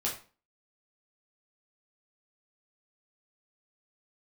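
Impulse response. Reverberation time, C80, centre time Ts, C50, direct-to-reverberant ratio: 0.35 s, 13.0 dB, 25 ms, 7.5 dB, −4.5 dB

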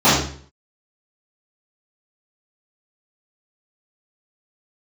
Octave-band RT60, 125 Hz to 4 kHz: 0.60, 0.55, 0.50, 0.45, 0.50, 0.45 seconds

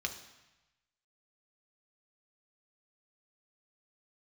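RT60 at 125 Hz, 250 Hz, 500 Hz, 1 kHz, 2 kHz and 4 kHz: 1.3, 0.95, 0.95, 1.1, 1.1, 1.0 seconds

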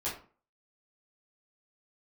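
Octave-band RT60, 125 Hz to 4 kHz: 0.45, 0.45, 0.40, 0.40, 0.35, 0.25 seconds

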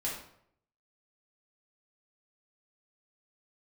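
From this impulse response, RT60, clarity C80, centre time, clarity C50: 0.70 s, 7.5 dB, 40 ms, 3.5 dB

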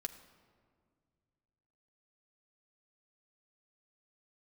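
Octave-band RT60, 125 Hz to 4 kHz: 3.0, 2.6, 2.1, 1.8, 1.4, 1.0 seconds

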